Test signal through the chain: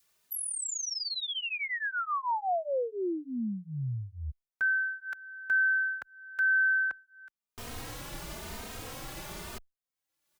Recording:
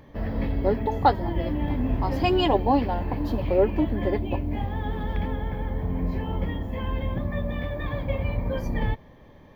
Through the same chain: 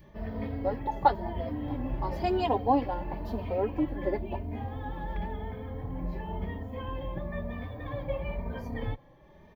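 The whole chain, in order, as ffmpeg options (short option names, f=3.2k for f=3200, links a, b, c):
-filter_complex "[0:a]adynamicequalizer=threshold=0.0141:dfrequency=730:dqfactor=0.75:tfrequency=730:tqfactor=0.75:attack=5:release=100:ratio=0.375:range=2.5:mode=boostabove:tftype=bell,acompressor=mode=upward:threshold=-39dB:ratio=2.5,asplit=2[a][b];[b]adelay=3,afreqshift=0.97[c];[a][c]amix=inputs=2:normalize=1,volume=-5.5dB"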